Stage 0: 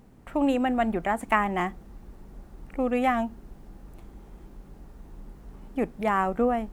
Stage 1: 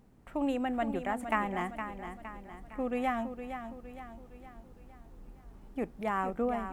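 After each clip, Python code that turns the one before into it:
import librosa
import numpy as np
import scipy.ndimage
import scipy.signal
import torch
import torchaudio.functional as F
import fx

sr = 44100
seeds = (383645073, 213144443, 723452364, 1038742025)

y = fx.echo_feedback(x, sr, ms=463, feedback_pct=48, wet_db=-9)
y = y * 10.0 ** (-7.5 / 20.0)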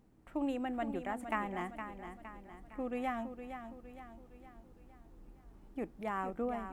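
y = fx.peak_eq(x, sr, hz=320.0, db=7.5, octaves=0.2)
y = y * 10.0 ** (-5.5 / 20.0)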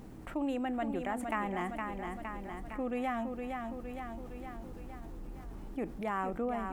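y = fx.env_flatten(x, sr, amount_pct=50)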